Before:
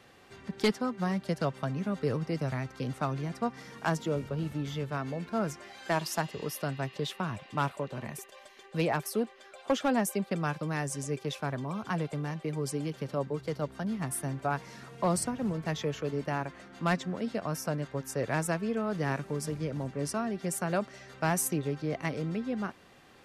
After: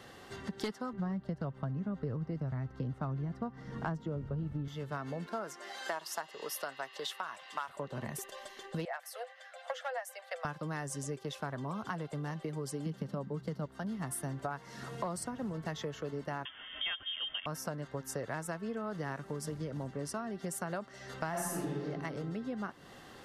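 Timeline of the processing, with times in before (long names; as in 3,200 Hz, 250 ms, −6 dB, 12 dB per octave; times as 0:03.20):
0:00.93–0:04.68: RIAA equalisation playback
0:05.26–0:07.68: high-pass filter 310 Hz → 970 Hz
0:08.85–0:10.45: Chebyshev high-pass with heavy ripple 490 Hz, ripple 9 dB
0:12.86–0:13.66: parametric band 190 Hz +14.5 dB
0:16.45–0:17.46: voice inversion scrambler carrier 3,400 Hz
0:21.30–0:21.82: thrown reverb, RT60 1.4 s, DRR −9 dB
whole clip: notch filter 2,400 Hz, Q 6.4; dynamic equaliser 1,200 Hz, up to +4 dB, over −41 dBFS, Q 0.8; downward compressor 6 to 1, threshold −41 dBFS; level +5 dB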